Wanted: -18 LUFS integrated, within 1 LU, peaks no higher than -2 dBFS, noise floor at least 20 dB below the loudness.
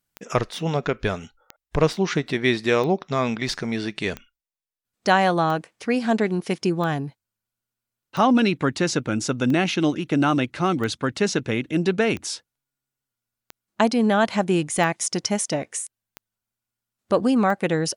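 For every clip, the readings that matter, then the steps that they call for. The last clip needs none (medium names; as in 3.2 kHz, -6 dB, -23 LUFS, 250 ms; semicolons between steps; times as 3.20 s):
clicks found 14; loudness -23.0 LUFS; peak level -3.5 dBFS; loudness target -18.0 LUFS
-> de-click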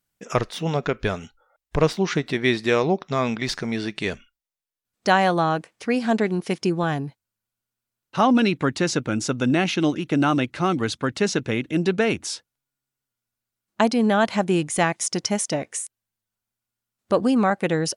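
clicks found 0; loudness -23.0 LUFS; peak level -3.5 dBFS; loudness target -18.0 LUFS
-> trim +5 dB; peak limiter -2 dBFS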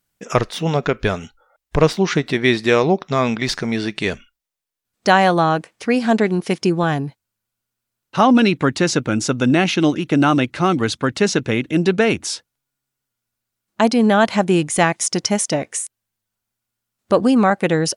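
loudness -18.0 LUFS; peak level -2.0 dBFS; noise floor -81 dBFS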